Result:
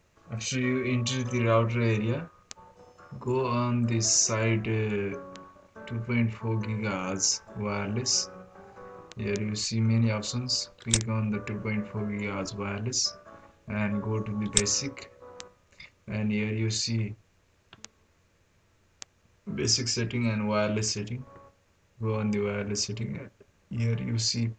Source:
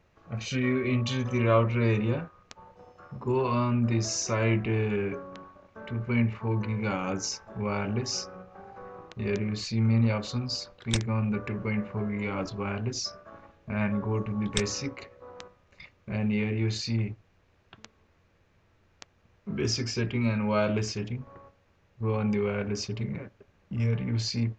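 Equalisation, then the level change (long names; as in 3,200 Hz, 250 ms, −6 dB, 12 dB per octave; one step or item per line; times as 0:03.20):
high-shelf EQ 5,000 Hz +7 dB
parametric band 7,700 Hz +8.5 dB 0.78 octaves
notch filter 770 Hz, Q 13
−1.0 dB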